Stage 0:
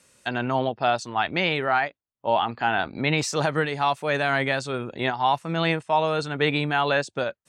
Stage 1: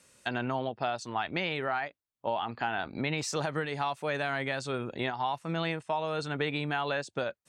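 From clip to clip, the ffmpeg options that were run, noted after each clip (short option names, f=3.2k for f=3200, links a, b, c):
-af "acompressor=threshold=-26dB:ratio=4,volume=-2.5dB"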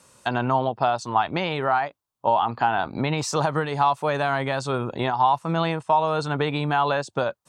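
-af "equalizer=f=125:t=o:w=1:g=4,equalizer=f=1k:t=o:w=1:g=9,equalizer=f=2k:t=o:w=1:g=-6,volume=6dB"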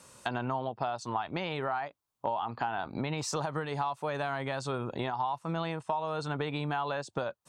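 -af "acompressor=threshold=-33dB:ratio=3"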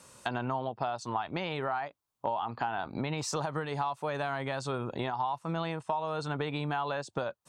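-af anull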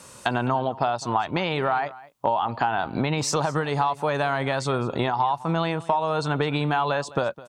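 -af "aecho=1:1:209:0.112,volume=9dB"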